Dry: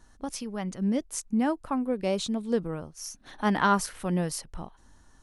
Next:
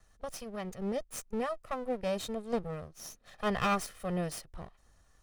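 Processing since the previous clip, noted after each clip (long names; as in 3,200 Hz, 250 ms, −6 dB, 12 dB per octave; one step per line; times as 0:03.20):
lower of the sound and its delayed copy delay 1.6 ms
level −5.5 dB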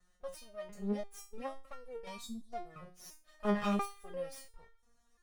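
gain on a spectral selection 0:02.20–0:02.53, 340–3,400 Hz −22 dB
step-sequenced resonator 2.9 Hz 180–460 Hz
level +6.5 dB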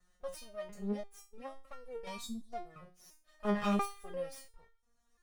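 shaped tremolo triangle 0.57 Hz, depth 70%
level +3 dB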